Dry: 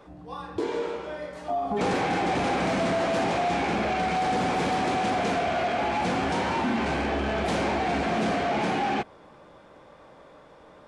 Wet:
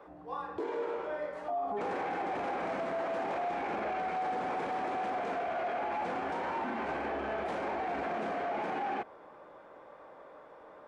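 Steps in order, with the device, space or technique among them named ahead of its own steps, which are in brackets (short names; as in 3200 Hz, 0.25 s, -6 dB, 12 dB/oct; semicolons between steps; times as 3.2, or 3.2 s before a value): DJ mixer with the lows and highs turned down (three-band isolator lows -14 dB, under 320 Hz, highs -14 dB, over 2100 Hz; limiter -27.5 dBFS, peak gain reduction 9.5 dB)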